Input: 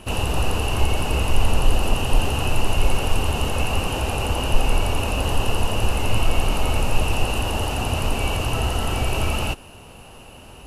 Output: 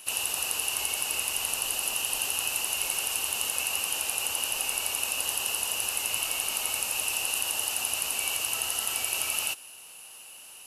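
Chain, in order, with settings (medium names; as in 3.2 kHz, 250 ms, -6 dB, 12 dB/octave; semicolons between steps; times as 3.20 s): differentiator; trim +5.5 dB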